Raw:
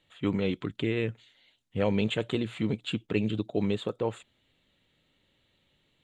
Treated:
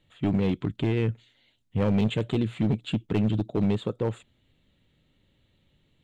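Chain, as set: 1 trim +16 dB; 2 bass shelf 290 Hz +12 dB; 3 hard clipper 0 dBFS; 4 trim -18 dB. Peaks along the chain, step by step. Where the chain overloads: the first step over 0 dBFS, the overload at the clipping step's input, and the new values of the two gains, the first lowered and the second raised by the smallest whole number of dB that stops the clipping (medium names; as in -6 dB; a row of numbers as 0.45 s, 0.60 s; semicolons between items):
+3.5 dBFS, +8.5 dBFS, 0.0 dBFS, -18.0 dBFS; step 1, 8.5 dB; step 1 +7 dB, step 4 -9 dB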